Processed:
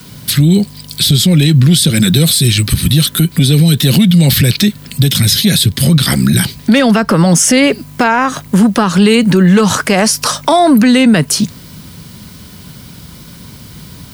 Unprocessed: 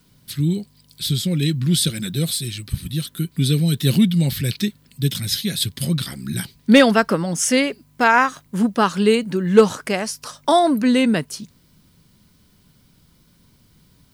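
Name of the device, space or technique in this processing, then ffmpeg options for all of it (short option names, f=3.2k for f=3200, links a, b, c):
mastering chain: -filter_complex "[0:a]highpass=51,equalizer=f=330:t=o:w=0.77:g=-2,acrossover=split=210|760[a][b][c];[a]acompressor=threshold=-23dB:ratio=4[d];[b]acompressor=threshold=-26dB:ratio=4[e];[c]acompressor=threshold=-26dB:ratio=4[f];[d][e][f]amix=inputs=3:normalize=0,acompressor=threshold=-27dB:ratio=2,asoftclip=type=tanh:threshold=-16dB,alimiter=level_in=24dB:limit=-1dB:release=50:level=0:latency=1,volume=-1dB"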